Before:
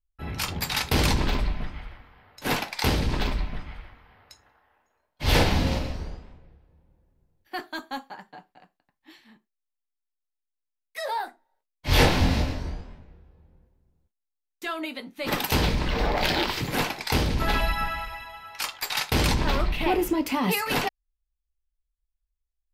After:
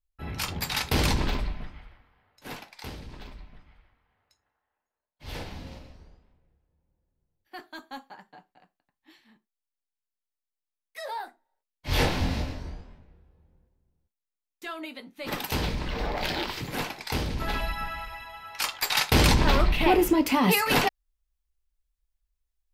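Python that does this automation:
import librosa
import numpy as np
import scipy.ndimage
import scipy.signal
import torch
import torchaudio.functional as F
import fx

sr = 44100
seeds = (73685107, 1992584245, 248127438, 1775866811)

y = fx.gain(x, sr, db=fx.line((1.24, -2.0), (1.9, -9.5), (3.05, -17.5), (6.15, -17.5), (8.11, -5.5), (17.82, -5.5), (18.8, 3.0)))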